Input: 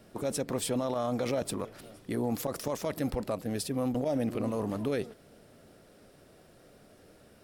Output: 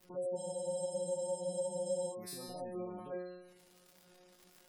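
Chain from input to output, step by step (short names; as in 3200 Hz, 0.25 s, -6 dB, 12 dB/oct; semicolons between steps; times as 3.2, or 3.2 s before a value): time stretch by phase-locked vocoder 0.63×; dynamic EQ 2900 Hz, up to -4 dB, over -54 dBFS, Q 0.9; resonator 180 Hz, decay 0.95 s, mix 100%; crackle 270/s -60 dBFS; delay with a stepping band-pass 0.149 s, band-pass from 4300 Hz, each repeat 0.7 oct, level -6 dB; spectral gate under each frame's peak -25 dB strong; high shelf 11000 Hz +11 dB; spectral freeze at 0.39, 1.73 s; gain +10.5 dB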